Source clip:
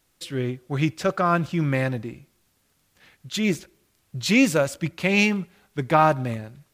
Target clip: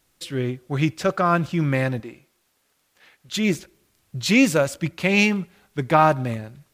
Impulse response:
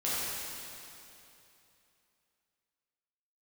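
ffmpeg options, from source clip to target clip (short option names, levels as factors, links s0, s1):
-filter_complex "[0:a]asettb=1/sr,asplit=3[s0][s1][s2];[s0]atrim=end=2.004[s3];[s1]atrim=start=2:end=3.29,asetpts=PTS-STARTPTS,afade=t=in:d=0.004:c=qsin,afade=t=out:st=1.286:d=0.004:c=qsin,bass=f=250:g=-13,treble=f=4000:g=-2[s4];[s2]atrim=start=3.286[s5];[s3][s4]acrossfade=d=0.004:c1=hsin:c2=qsin[s6];[s6][s5]acrossfade=d=0.004:c1=qsin:c2=hsin,volume=1.19"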